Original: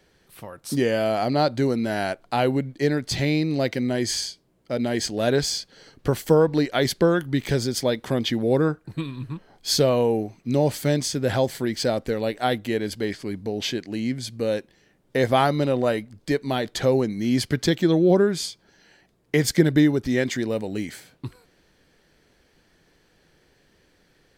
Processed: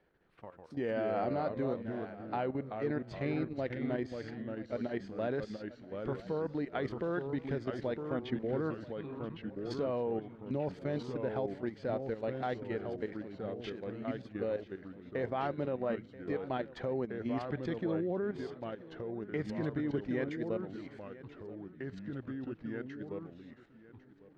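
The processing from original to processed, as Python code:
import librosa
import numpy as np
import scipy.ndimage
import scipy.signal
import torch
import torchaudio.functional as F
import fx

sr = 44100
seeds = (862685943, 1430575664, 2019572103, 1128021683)

y = scipy.signal.sosfilt(scipy.signal.butter(2, 1800.0, 'lowpass', fs=sr, output='sos'), x)
y = fx.low_shelf(y, sr, hz=220.0, db=-5.5)
y = fx.level_steps(y, sr, step_db=13)
y = fx.echo_feedback(y, sr, ms=981, feedback_pct=41, wet_db=-18)
y = fx.echo_pitch(y, sr, ms=98, semitones=-2, count=2, db_per_echo=-6.0)
y = y * librosa.db_to_amplitude(-7.5)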